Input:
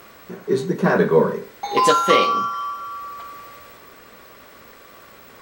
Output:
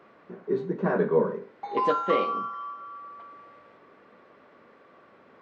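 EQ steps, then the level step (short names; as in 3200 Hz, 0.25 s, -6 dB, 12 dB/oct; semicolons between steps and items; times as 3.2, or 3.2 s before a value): HPF 180 Hz 12 dB/oct; tape spacing loss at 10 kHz 40 dB; -5.0 dB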